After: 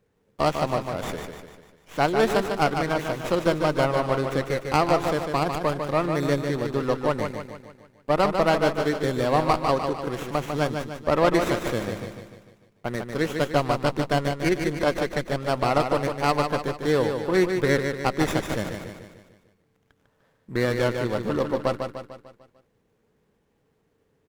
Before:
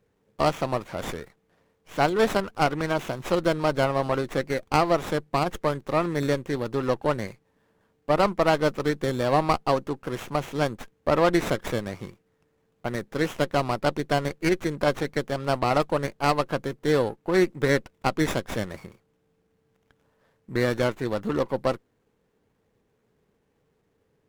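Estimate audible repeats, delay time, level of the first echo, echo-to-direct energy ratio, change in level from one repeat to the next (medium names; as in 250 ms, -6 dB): 5, 149 ms, -6.0 dB, -5.0 dB, -6.0 dB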